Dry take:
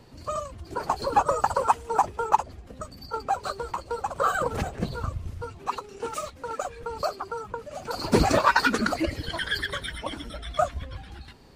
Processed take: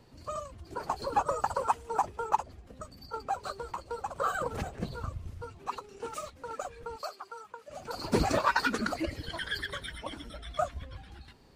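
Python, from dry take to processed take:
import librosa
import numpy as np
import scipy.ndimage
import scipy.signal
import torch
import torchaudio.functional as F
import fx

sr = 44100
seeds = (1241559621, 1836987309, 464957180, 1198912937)

y = fx.highpass(x, sr, hz=1100.0, slope=6, at=(6.96, 7.68))
y = y * librosa.db_to_amplitude(-6.5)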